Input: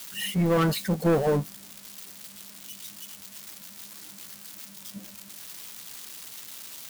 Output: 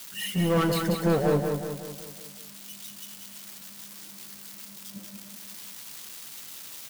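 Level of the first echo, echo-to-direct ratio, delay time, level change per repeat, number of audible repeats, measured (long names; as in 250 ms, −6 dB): −5.5 dB, −4.0 dB, 185 ms, −6.0 dB, 6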